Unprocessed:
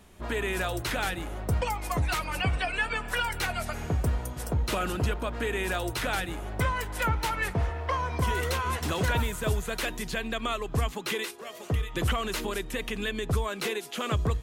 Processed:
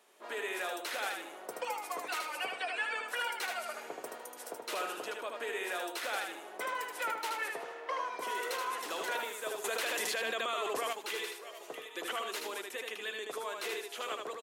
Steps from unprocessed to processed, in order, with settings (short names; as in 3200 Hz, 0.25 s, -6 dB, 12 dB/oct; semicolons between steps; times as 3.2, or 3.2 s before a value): HPF 390 Hz 24 dB/oct; feedback echo 77 ms, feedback 24%, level -4 dB; 9.64–10.93 fast leveller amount 100%; gain -7 dB